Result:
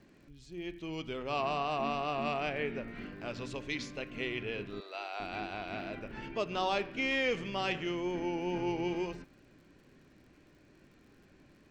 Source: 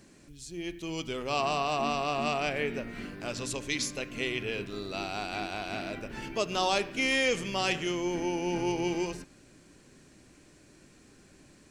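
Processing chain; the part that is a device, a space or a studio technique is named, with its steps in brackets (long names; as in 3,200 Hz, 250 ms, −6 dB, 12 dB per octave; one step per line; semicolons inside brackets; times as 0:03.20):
lo-fi chain (low-pass filter 3,300 Hz 12 dB per octave; tape wow and flutter 25 cents; surface crackle 71 per second −53 dBFS)
0:04.80–0:05.20: high-pass filter 480 Hz 24 dB per octave
level −3.5 dB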